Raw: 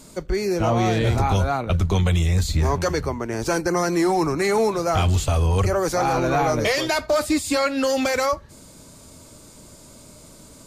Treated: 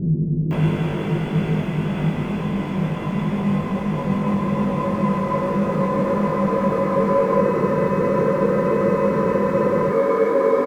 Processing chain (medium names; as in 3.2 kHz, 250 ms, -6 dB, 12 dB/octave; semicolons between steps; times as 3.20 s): formants replaced by sine waves; bass shelf 490 Hz +11 dB; crossover distortion -43 dBFS; Paulstretch 14×, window 1.00 s, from 2.21 s; doubling 20 ms -3.5 dB; bands offset in time lows, highs 510 ms, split 320 Hz; spectral freeze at 7.43 s, 2.47 s; tape noise reduction on one side only decoder only